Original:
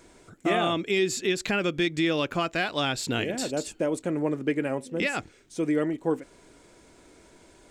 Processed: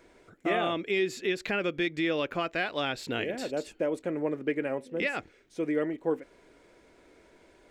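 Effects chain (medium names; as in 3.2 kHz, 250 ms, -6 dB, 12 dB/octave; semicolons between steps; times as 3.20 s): ten-band graphic EQ 125 Hz -3 dB, 500 Hz +5 dB, 2 kHz +5 dB, 8 kHz -8 dB; trim -6 dB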